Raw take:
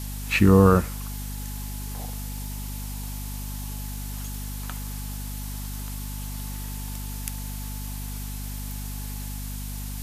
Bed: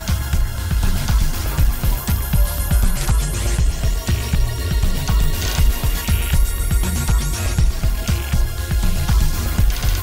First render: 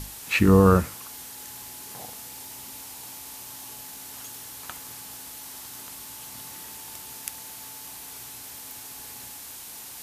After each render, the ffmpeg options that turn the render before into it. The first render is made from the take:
-af "bandreject=f=50:t=h:w=6,bandreject=f=100:t=h:w=6,bandreject=f=150:t=h:w=6,bandreject=f=200:t=h:w=6,bandreject=f=250:t=h:w=6"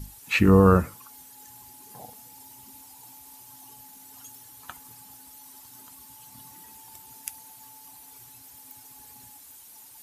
-af "afftdn=nr=13:nf=-41"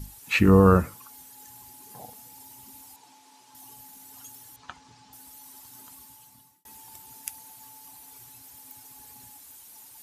-filter_complex "[0:a]asettb=1/sr,asplit=3[s0][s1][s2];[s0]atrim=end=2.964[s3];[s1]atrim=start=2.96:end=3.55,asetpts=PTS-STARTPTS,afade=t=in:d=0.004:c=qsin,afade=t=out:st=0.586:d=0.004:c=qsin,highpass=230,lowpass=5700[s4];[s2]atrim=start=3.546[s5];[s3][s4]acrossfade=d=0.004:c1=hsin:c2=qsin[s6];[s6][s5]acrossfade=d=0.004:c1=qsin:c2=hsin,asettb=1/sr,asplit=3[s7][s8][s9];[s7]atrim=end=4.564[s10];[s8]atrim=start=4.56:end=5.13,asetpts=PTS-STARTPTS,afade=t=in:d=0.004:c=qsin,afade=t=out:st=0.566:d=0.004:c=qsin,lowpass=f=5900:w=0.5412,lowpass=f=5900:w=1.3066[s11];[s9]atrim=start=5.126[s12];[s10][s11]acrossfade=d=0.004:c1=hsin:c2=qsin[s13];[s13][s12]acrossfade=d=0.004:c1=qsin:c2=hsin,asplit=2[s14][s15];[s14]atrim=end=6.65,asetpts=PTS-STARTPTS,afade=t=out:st=5.96:d=0.69[s16];[s15]atrim=start=6.65,asetpts=PTS-STARTPTS,afade=t=in:d=0.004:c=hsin[s17];[s16][s17]concat=n=2:v=0:a=1"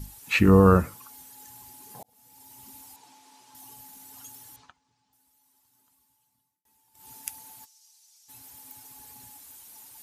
-filter_complex "[0:a]asplit=3[s0][s1][s2];[s0]afade=t=out:st=7.64:d=0.02[s3];[s1]bandpass=f=5700:t=q:w=2.7,afade=t=in:st=7.64:d=0.02,afade=t=out:st=8.28:d=0.02[s4];[s2]afade=t=in:st=8.28:d=0.02[s5];[s3][s4][s5]amix=inputs=3:normalize=0,asplit=4[s6][s7][s8][s9];[s6]atrim=end=2.03,asetpts=PTS-STARTPTS,afade=t=out:st=2.026:d=0.004:c=hsin[s10];[s7]atrim=start=2.03:end=4.72,asetpts=PTS-STARTPTS,afade=t=in:d=0.63,afade=t=out:st=2.55:d=0.14:silence=0.105925[s11];[s8]atrim=start=4.72:end=6.94,asetpts=PTS-STARTPTS,volume=0.106[s12];[s9]atrim=start=6.94,asetpts=PTS-STARTPTS,afade=t=in:d=0.14:silence=0.105925[s13];[s10][s11][s12][s13]concat=n=4:v=0:a=1"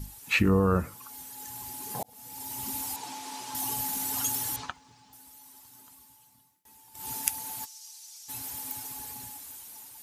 -af "alimiter=limit=0.224:level=0:latency=1:release=447,dynaudnorm=f=670:g=5:m=6.68"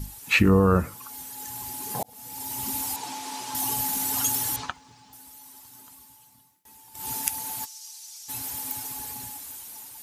-af "alimiter=level_in=1.68:limit=0.891:release=50:level=0:latency=1"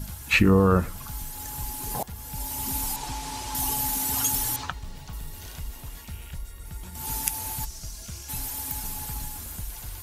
-filter_complex "[1:a]volume=0.0891[s0];[0:a][s0]amix=inputs=2:normalize=0"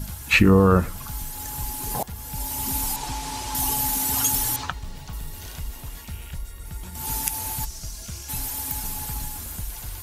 -af "volume=1.41,alimiter=limit=0.891:level=0:latency=1"

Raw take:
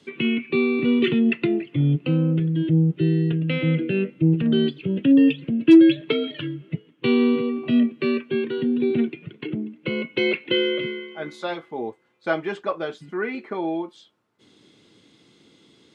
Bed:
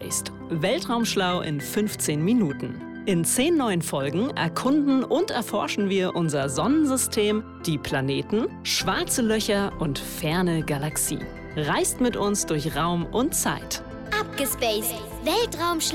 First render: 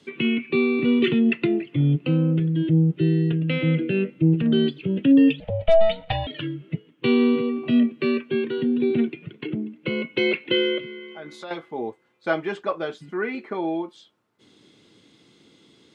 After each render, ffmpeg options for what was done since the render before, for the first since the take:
-filter_complex "[0:a]asettb=1/sr,asplit=3[s0][s1][s2];[s0]atrim=end=5.404[s3];[s1]atrim=start=5.4:end=6.27,asetpts=PTS-STARTPTS,afade=t=in:d=0.004:c=qsin,afade=t=out:st=0.866:d=0.004:c=qsin,aeval=exprs='val(0)*sin(2*PI*330*n/s)':c=same[s4];[s2]atrim=start=6.266[s5];[s3][s4]acrossfade=d=0.004:c1=hsin:c2=qsin[s6];[s6][s5]acrossfade=d=0.004:c1=qsin:c2=hsin,asettb=1/sr,asplit=3[s7][s8][s9];[s7]atrim=end=10.784[s10];[s8]atrim=start=10.78:end=11.51,asetpts=PTS-STARTPTS,afade=t=in:d=0.004:c=qsin,afade=t=out:st=0.726:d=0.004:c=qsin,acompressor=threshold=0.0178:ratio=3:attack=3.2:release=140:knee=1:detection=peak[s11];[s9]atrim=start=11.506[s12];[s10][s11]acrossfade=d=0.004:c1=hsin:c2=qsin[s13];[s13][s12]acrossfade=d=0.004:c1=qsin:c2=hsin"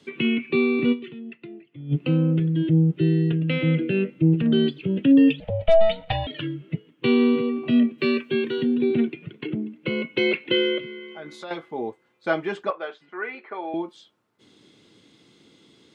-filter_complex "[0:a]asettb=1/sr,asplit=3[s0][s1][s2];[s0]atrim=end=7.984[s3];[s1]atrim=start=7.98:end=8.75,asetpts=PTS-STARTPTS,afade=t=in:d=0.004:c=qsin,afade=t=out:st=0.766:d=0.004:c=qsin,highshelf=f=3800:g=10.5[s4];[s2]atrim=start=8.746[s5];[s3][s4]acrossfade=d=0.004:c1=hsin:c2=qsin[s6];[s6][s5]acrossfade=d=0.004:c1=qsin:c2=hsin,asettb=1/sr,asplit=3[s7][s8][s9];[s7]atrim=end=12.704[s10];[s8]atrim=start=12.7:end=13.74,asetpts=PTS-STARTPTS,afade=t=in:d=0.004:c=qsin,afade=t=out:st=1.036:d=0.004:c=qsin,highpass=590,lowpass=2900[s11];[s9]atrim=start=13.736[s12];[s10][s11]acrossfade=d=0.004:c1=hsin:c2=qsin[s13];[s13][s12]acrossfade=d=0.004:c1=qsin:c2=hsin,asplit=3[s14][s15][s16];[s14]atrim=end=1.12,asetpts=PTS-STARTPTS,afade=t=out:st=0.92:d=0.2:c=exp:silence=0.11885[s17];[s15]atrim=start=1.12:end=1.73,asetpts=PTS-STARTPTS,volume=0.119[s18];[s16]atrim=start=1.73,asetpts=PTS-STARTPTS,afade=t=in:d=0.2:c=exp:silence=0.11885[s19];[s17][s18][s19]concat=n=3:v=0:a=1"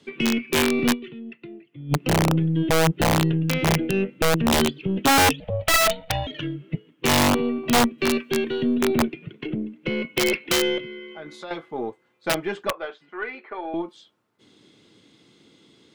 -af "aeval=exprs='0.473*(cos(1*acos(clip(val(0)/0.473,-1,1)))-cos(1*PI/2))+0.015*(cos(8*acos(clip(val(0)/0.473,-1,1)))-cos(8*PI/2))':c=same,aeval=exprs='(mod(4.22*val(0)+1,2)-1)/4.22':c=same"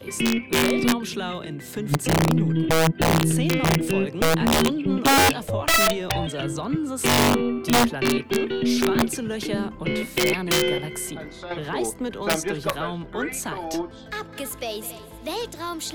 -filter_complex "[1:a]volume=0.473[s0];[0:a][s0]amix=inputs=2:normalize=0"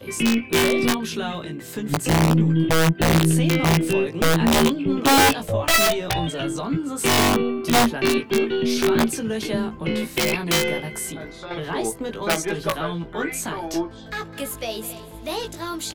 -filter_complex "[0:a]asplit=2[s0][s1];[s1]adelay=18,volume=0.596[s2];[s0][s2]amix=inputs=2:normalize=0"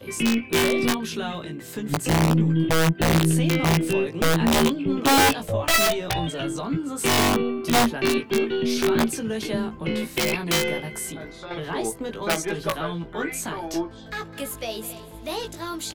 -af "volume=0.794"

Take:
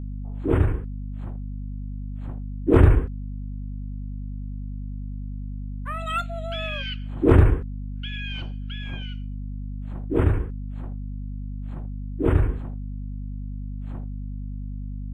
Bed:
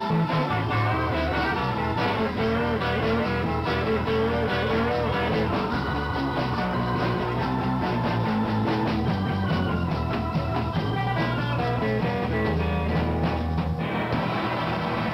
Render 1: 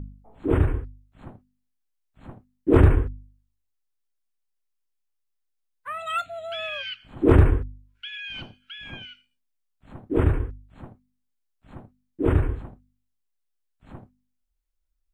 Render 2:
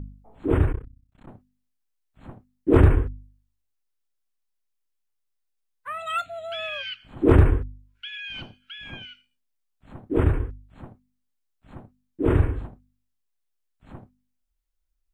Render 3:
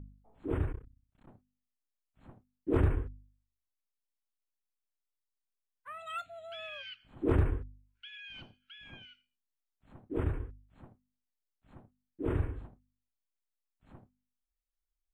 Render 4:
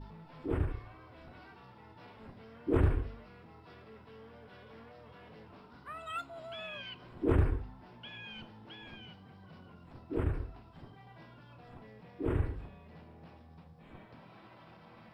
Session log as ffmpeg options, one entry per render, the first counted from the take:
-af "bandreject=f=50:t=h:w=4,bandreject=f=100:t=h:w=4,bandreject=f=150:t=h:w=4,bandreject=f=200:t=h:w=4,bandreject=f=250:t=h:w=4"
-filter_complex "[0:a]asplit=3[s0][s1][s2];[s0]afade=t=out:st=0.71:d=0.02[s3];[s1]tremolo=f=32:d=1,afade=t=in:st=0.71:d=0.02,afade=t=out:st=1.27:d=0.02[s4];[s2]afade=t=in:st=1.27:d=0.02[s5];[s3][s4][s5]amix=inputs=3:normalize=0,asettb=1/sr,asplit=3[s6][s7][s8];[s6]atrim=end=12.224[s9];[s7]atrim=start=12.22:end=12.67,asetpts=PTS-STARTPTS,afade=t=in:d=0.004:c=qsin,afade=t=out:st=0.446:d=0.004:c=qsin,asplit=2[s10][s11];[s11]adelay=42,volume=0.562[s12];[s10][s12]amix=inputs=2:normalize=0,atrim=end_sample=19845[s13];[s8]atrim=start=12.666[s14];[s9][s13]acrossfade=d=0.004:c1=hsin:c2=qsin[s15];[s15][s14]acrossfade=d=0.004:c1=qsin:c2=hsin"
-af "volume=0.251"
-filter_complex "[1:a]volume=0.0335[s0];[0:a][s0]amix=inputs=2:normalize=0"

